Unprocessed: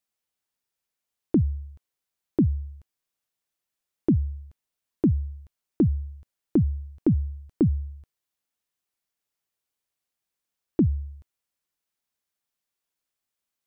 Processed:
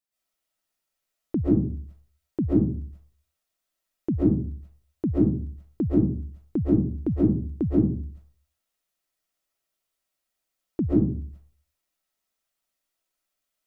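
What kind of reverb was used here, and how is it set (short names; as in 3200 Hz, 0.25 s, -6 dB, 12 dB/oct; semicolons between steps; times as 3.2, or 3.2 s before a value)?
digital reverb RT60 0.42 s, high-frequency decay 0.4×, pre-delay 95 ms, DRR -9 dB; gain -5.5 dB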